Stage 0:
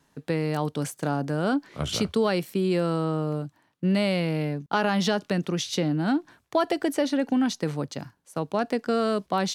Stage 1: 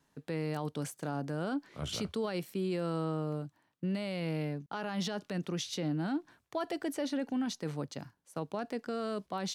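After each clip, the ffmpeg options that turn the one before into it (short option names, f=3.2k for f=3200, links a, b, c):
-af "alimiter=limit=-18.5dB:level=0:latency=1:release=29,volume=-7.5dB"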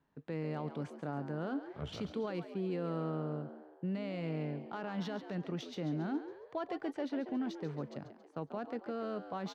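-filter_complex "[0:a]adynamicsmooth=sensitivity=2:basefreq=2.6k,asplit=2[a][b];[b]asplit=5[c][d][e][f][g];[c]adelay=138,afreqshift=78,volume=-11.5dB[h];[d]adelay=276,afreqshift=156,volume=-17.9dB[i];[e]adelay=414,afreqshift=234,volume=-24.3dB[j];[f]adelay=552,afreqshift=312,volume=-30.6dB[k];[g]adelay=690,afreqshift=390,volume=-37dB[l];[h][i][j][k][l]amix=inputs=5:normalize=0[m];[a][m]amix=inputs=2:normalize=0,volume=-3dB"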